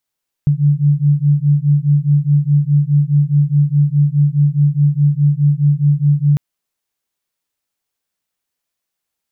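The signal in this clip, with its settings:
two tones that beat 143 Hz, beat 4.8 Hz, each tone −13 dBFS 5.90 s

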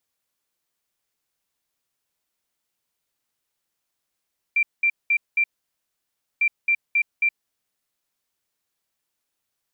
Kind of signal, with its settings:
beeps in groups sine 2,360 Hz, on 0.07 s, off 0.20 s, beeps 4, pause 0.97 s, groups 2, −16 dBFS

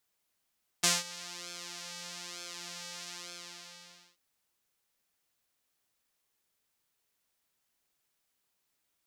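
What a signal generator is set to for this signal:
subtractive patch with pulse-width modulation F3, sub −20.5 dB, filter bandpass, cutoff 4,900 Hz, Q 1.4, filter envelope 0.5 octaves, attack 11 ms, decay 0.19 s, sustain −21 dB, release 1.08 s, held 2.26 s, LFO 1.1 Hz, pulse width 34%, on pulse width 16%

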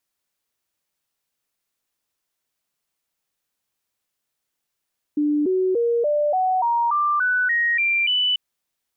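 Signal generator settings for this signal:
stepped sweep 296 Hz up, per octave 3, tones 11, 0.29 s, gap 0.00 s −17 dBFS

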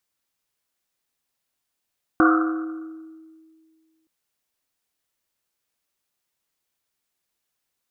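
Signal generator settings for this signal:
drum after Risset length 1.87 s, pitch 320 Hz, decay 2.11 s, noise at 1,300 Hz, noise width 350 Hz, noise 35%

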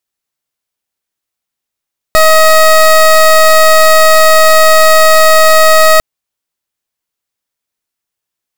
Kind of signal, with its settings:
pulse wave 633 Hz, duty 21% −4.5 dBFS 3.85 s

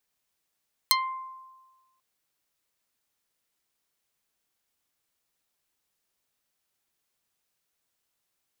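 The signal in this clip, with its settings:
Karplus-Strong string C6, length 1.09 s, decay 1.32 s, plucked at 0.42, dark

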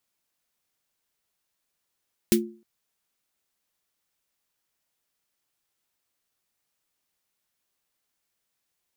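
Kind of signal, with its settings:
synth snare length 0.31 s, tones 220 Hz, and 350 Hz, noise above 1,800 Hz, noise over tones −3 dB, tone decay 0.39 s, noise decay 0.12 s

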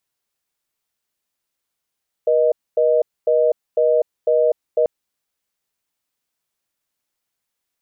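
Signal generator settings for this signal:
call progress tone reorder tone, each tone −15.5 dBFS 2.59 s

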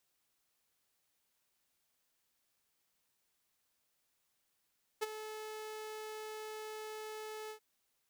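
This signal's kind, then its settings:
note with an ADSR envelope saw 432 Hz, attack 19 ms, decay 24 ms, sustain −12 dB, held 2.49 s, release 93 ms −28.5 dBFS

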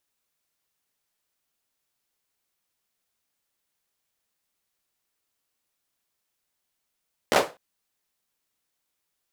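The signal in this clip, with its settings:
synth clap length 0.25 s, apart 13 ms, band 560 Hz, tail 0.26 s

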